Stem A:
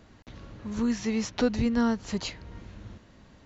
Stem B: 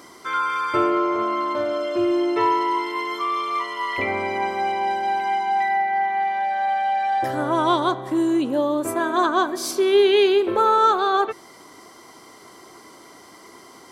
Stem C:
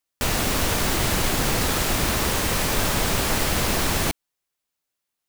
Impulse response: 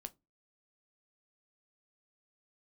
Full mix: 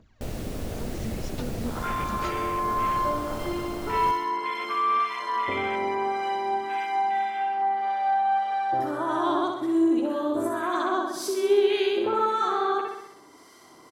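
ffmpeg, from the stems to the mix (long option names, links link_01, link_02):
-filter_complex "[0:a]acompressor=threshold=-28dB:ratio=6,aphaser=in_gain=1:out_gain=1:delay=5:decay=0.73:speed=0.95:type=triangular,volume=-14dB,asplit=2[link_01][link_02];[link_02]volume=-3dB[link_03];[1:a]dynaudnorm=framelen=130:gausssize=13:maxgain=7.5dB,acrossover=split=1200[link_04][link_05];[link_04]aeval=exprs='val(0)*(1-0.5/2+0.5/2*cos(2*PI*1.8*n/s))':channel_layout=same[link_06];[link_05]aeval=exprs='val(0)*(1-0.5/2-0.5/2*cos(2*PI*1.8*n/s))':channel_layout=same[link_07];[link_06][link_07]amix=inputs=2:normalize=0,adelay=1500,volume=-6dB,asplit=2[link_08][link_09];[link_09]volume=-6dB[link_10];[2:a]volume=-7dB,asplit=3[link_11][link_12][link_13];[link_12]volume=-18dB[link_14];[link_13]volume=-22.5dB[link_15];[link_08][link_11]amix=inputs=2:normalize=0,afwtdn=0.0398,acompressor=threshold=-26dB:ratio=6,volume=0dB[link_16];[3:a]atrim=start_sample=2205[link_17];[link_03][link_14]amix=inputs=2:normalize=0[link_18];[link_18][link_17]afir=irnorm=-1:irlink=0[link_19];[link_10][link_15]amix=inputs=2:normalize=0,aecho=0:1:64|128|192|256|320|384|448|512|576:1|0.59|0.348|0.205|0.121|0.0715|0.0422|0.0249|0.0147[link_20];[link_01][link_16][link_19][link_20]amix=inputs=4:normalize=0"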